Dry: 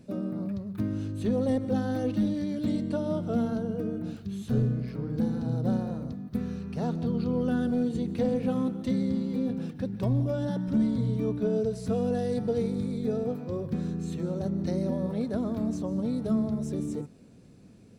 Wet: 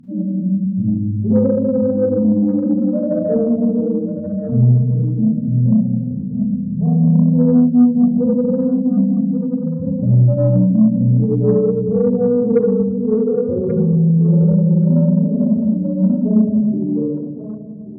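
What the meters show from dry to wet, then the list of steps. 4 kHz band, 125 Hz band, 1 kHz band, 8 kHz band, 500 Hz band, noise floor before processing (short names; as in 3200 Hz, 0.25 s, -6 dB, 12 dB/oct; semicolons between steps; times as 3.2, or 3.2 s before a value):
under -35 dB, +16.0 dB, +1.5 dB, n/a, +12.5 dB, -52 dBFS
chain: spectral contrast raised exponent 3.4; Schroeder reverb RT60 1.6 s, combs from 33 ms, DRR -6.5 dB; added harmonics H 5 -29 dB, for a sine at -8.5 dBFS; thinning echo 1.132 s, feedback 18%, high-pass 710 Hz, level -7 dB; gain +6 dB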